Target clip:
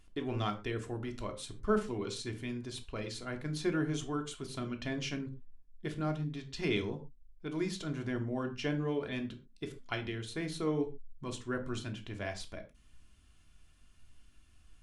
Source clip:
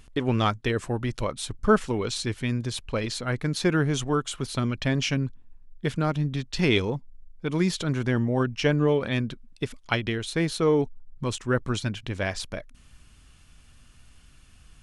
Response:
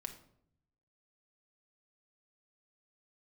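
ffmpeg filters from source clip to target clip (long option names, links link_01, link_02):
-filter_complex "[1:a]atrim=start_sample=2205,afade=type=out:start_time=0.27:duration=0.01,atrim=end_sample=12348,asetrate=70560,aresample=44100[link_01];[0:a][link_01]afir=irnorm=-1:irlink=0,volume=-4dB"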